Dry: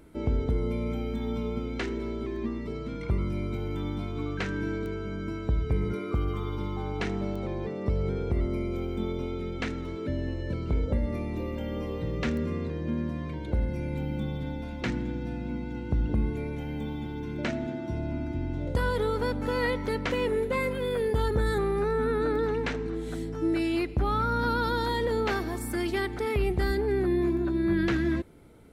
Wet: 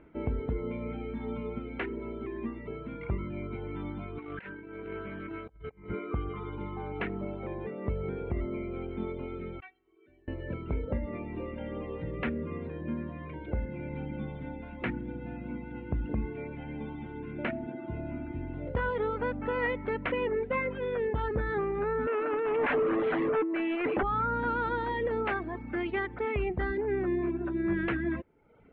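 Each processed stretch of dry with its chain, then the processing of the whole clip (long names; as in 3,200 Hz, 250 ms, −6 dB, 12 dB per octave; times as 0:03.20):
0:04.18–0:05.90: low-shelf EQ 290 Hz −7 dB + compressor whose output falls as the input rises −37 dBFS, ratio −0.5 + highs frequency-modulated by the lows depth 0.11 ms
0:09.60–0:10.28: low-shelf EQ 400 Hz −6.5 dB + stiff-string resonator 370 Hz, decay 0.26 s, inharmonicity 0.002
0:22.07–0:24.03: high-pass filter 260 Hz + compressor whose output falls as the input rises −33 dBFS, ratio −0.5 + mid-hump overdrive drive 30 dB, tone 1,300 Hz, clips at −16.5 dBFS
whole clip: reverb reduction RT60 0.72 s; Butterworth low-pass 2,800 Hz 36 dB per octave; low-shelf EQ 230 Hz −5.5 dB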